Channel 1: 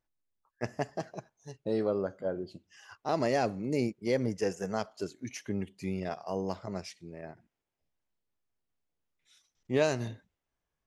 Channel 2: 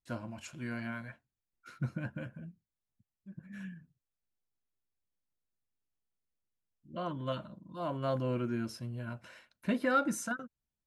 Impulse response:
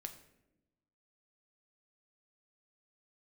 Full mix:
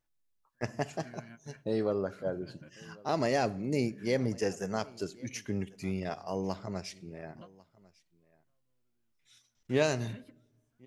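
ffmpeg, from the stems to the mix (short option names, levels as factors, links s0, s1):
-filter_complex "[0:a]volume=1,asplit=4[s0][s1][s2][s3];[s1]volume=0.473[s4];[s2]volume=0.0794[s5];[1:a]acompressor=threshold=0.00562:ratio=4,adelay=450,volume=0.841[s6];[s3]apad=whole_len=499130[s7];[s6][s7]sidechaingate=range=0.0141:threshold=0.00126:ratio=16:detection=peak[s8];[2:a]atrim=start_sample=2205[s9];[s4][s9]afir=irnorm=-1:irlink=0[s10];[s5]aecho=0:1:1097:1[s11];[s0][s8][s10][s11]amix=inputs=4:normalize=0,equalizer=f=510:w=0.37:g=-3"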